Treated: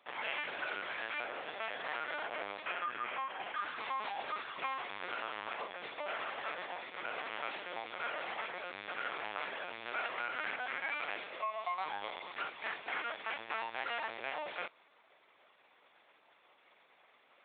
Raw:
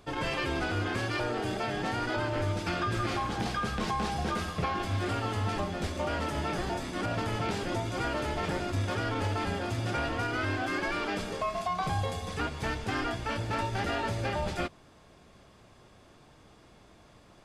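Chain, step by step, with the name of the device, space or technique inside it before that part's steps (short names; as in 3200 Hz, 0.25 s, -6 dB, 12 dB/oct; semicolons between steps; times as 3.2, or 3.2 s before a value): 2.66–3.57 elliptic low-pass 3200 Hz; talking toy (LPC vocoder at 8 kHz pitch kept; HPF 660 Hz 12 dB/oct; bell 2200 Hz +6 dB 0.5 oct); gain -5 dB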